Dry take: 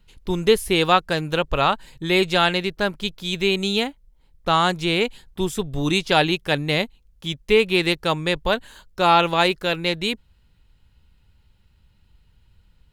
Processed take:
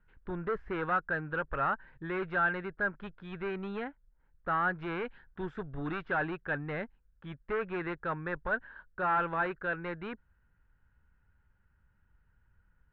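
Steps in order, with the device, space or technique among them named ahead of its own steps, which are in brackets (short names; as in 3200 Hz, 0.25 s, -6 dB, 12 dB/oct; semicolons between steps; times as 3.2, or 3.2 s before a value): 4.82–6.03 high shelf 2900 Hz +7.5 dB; overdriven synthesiser ladder filter (soft clip -18 dBFS, distortion -8 dB; ladder low-pass 1700 Hz, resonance 70%)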